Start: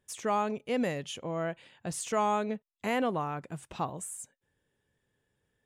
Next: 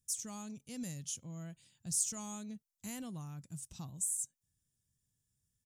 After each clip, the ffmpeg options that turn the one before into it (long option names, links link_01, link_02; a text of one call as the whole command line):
ffmpeg -i in.wav -af "firequalizer=gain_entry='entry(130,0);entry(420,-22);entry(2100,-17);entry(5700,8)':delay=0.05:min_phase=1,volume=-2.5dB" out.wav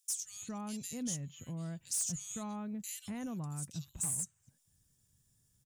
ffmpeg -i in.wav -filter_complex "[0:a]acrossover=split=2400[link_01][link_02];[link_01]adelay=240[link_03];[link_03][link_02]amix=inputs=2:normalize=0,aeval=exprs='0.119*(cos(1*acos(clip(val(0)/0.119,-1,1)))-cos(1*PI/2))+0.0531*(cos(5*acos(clip(val(0)/0.119,-1,1)))-cos(5*PI/2))':channel_layout=same,acompressor=threshold=-48dB:ratio=1.5" out.wav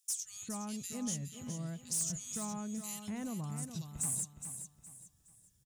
ffmpeg -i in.wav -af "aecho=1:1:416|832|1248|1664:0.355|0.117|0.0386|0.0128" out.wav